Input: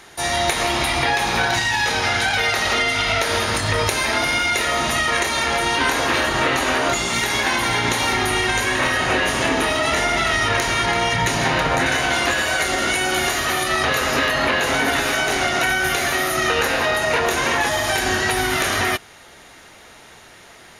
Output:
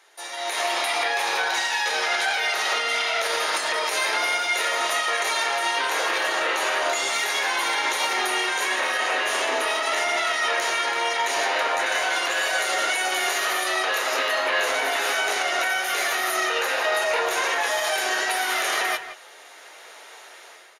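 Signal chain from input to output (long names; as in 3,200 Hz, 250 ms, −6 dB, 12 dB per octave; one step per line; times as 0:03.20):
high-pass filter 420 Hz 24 dB per octave
brickwall limiter −13.5 dBFS, peak gain reduction 8.5 dB
automatic gain control gain up to 12.5 dB
flanger 0.16 Hz, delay 9 ms, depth 3.5 ms, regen −45%
far-end echo of a speakerphone 170 ms, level −11 dB
level −8 dB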